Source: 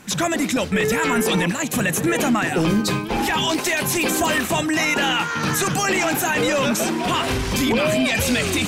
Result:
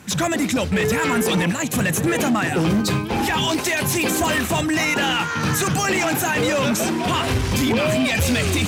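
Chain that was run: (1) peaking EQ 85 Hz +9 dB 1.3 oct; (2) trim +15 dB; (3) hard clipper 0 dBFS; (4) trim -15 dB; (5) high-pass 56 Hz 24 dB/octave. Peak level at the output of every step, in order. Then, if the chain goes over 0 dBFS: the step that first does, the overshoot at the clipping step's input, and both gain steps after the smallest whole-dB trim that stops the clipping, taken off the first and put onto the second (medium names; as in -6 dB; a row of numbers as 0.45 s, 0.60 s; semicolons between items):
-7.5 dBFS, +7.5 dBFS, 0.0 dBFS, -15.0 dBFS, -9.0 dBFS; step 2, 7.5 dB; step 2 +7 dB, step 4 -7 dB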